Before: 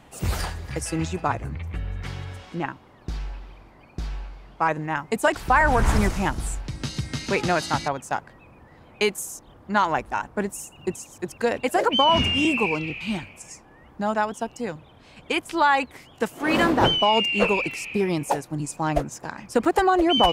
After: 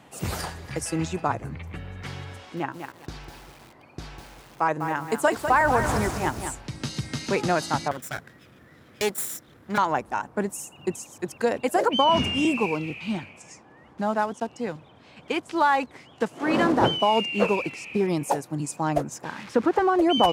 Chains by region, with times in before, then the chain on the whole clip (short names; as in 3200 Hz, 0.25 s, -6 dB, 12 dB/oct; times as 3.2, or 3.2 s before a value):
2.37–6.52 bell 190 Hz -10 dB 0.25 oct + lo-fi delay 0.199 s, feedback 35%, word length 7-bit, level -7.5 dB
7.91–9.78 minimum comb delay 0.55 ms + high shelf 9700 Hz +9 dB
12.54–18.08 block floating point 5-bit + air absorption 70 m
19.24–19.99 switching spikes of -16.5 dBFS + LPF 2000 Hz + bell 690 Hz -6.5 dB 0.25 oct
whole clip: HPF 110 Hz 12 dB/oct; dynamic EQ 2600 Hz, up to -5 dB, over -37 dBFS, Q 0.82